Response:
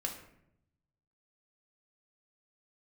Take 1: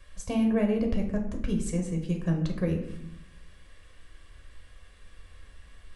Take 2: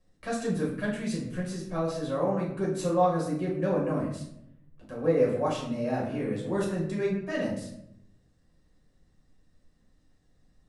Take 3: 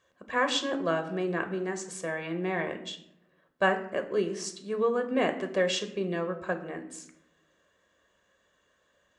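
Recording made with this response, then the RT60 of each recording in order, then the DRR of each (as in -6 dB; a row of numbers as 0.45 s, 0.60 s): 1; 0.75 s, 0.75 s, 0.75 s; 1.5 dB, -5.0 dB, 6.5 dB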